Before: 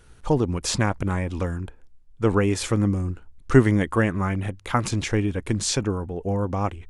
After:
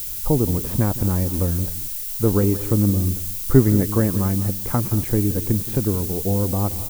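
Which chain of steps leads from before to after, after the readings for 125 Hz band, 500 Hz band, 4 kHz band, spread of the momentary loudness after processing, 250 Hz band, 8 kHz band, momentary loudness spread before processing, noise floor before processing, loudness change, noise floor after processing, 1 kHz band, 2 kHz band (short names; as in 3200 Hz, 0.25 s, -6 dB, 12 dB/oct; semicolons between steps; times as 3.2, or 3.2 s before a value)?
+4.5 dB, +1.0 dB, -5.5 dB, 5 LU, +3.0 dB, +2.0 dB, 9 LU, -51 dBFS, +3.5 dB, -29 dBFS, -4.0 dB, -9.5 dB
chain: air absorption 430 m; echo 0.229 s -21 dB; in parallel at 0 dB: compressor, threshold -31 dBFS, peak gain reduction 20 dB; on the sum: tilt shelf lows +8 dB, about 1100 Hz; on a send: echo 0.172 s -15 dB; on the sum: added noise violet -24 dBFS; gain -5.5 dB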